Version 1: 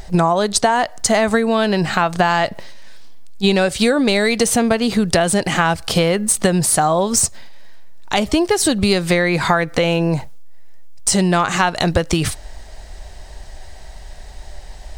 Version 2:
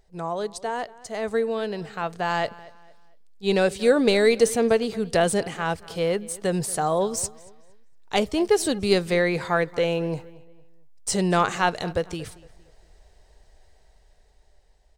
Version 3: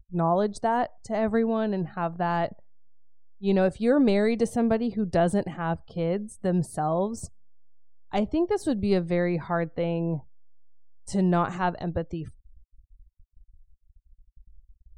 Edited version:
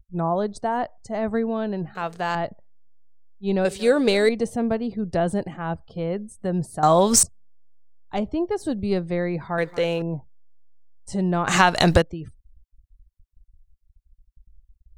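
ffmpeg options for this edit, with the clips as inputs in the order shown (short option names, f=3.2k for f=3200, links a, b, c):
-filter_complex "[1:a]asplit=3[a][b][c];[0:a]asplit=2[d][e];[2:a]asplit=6[f][g][h][i][j][k];[f]atrim=end=1.952[l];[a]atrim=start=1.948:end=2.352[m];[g]atrim=start=2.348:end=3.652[n];[b]atrim=start=3.648:end=4.292[o];[h]atrim=start=4.288:end=6.832[p];[d]atrim=start=6.828:end=7.232[q];[i]atrim=start=7.228:end=9.582[r];[c]atrim=start=9.578:end=10.022[s];[j]atrim=start=10.018:end=11.472[t];[e]atrim=start=11.468:end=12.022[u];[k]atrim=start=12.018[v];[l][m]acrossfade=d=0.004:c1=hsin:c2=hsin[w];[w][n]acrossfade=d=0.004:c1=hsin:c2=hsin[x];[x][o]acrossfade=d=0.004:c1=hsin:c2=hsin[y];[y][p]acrossfade=d=0.004:c1=hsin:c2=hsin[z];[z][q]acrossfade=d=0.004:c1=hsin:c2=hsin[aa];[aa][r]acrossfade=d=0.004:c1=hsin:c2=hsin[ab];[ab][s]acrossfade=d=0.004:c1=hsin:c2=hsin[ac];[ac][t]acrossfade=d=0.004:c1=hsin:c2=hsin[ad];[ad][u]acrossfade=d=0.004:c1=hsin:c2=hsin[ae];[ae][v]acrossfade=d=0.004:c1=hsin:c2=hsin"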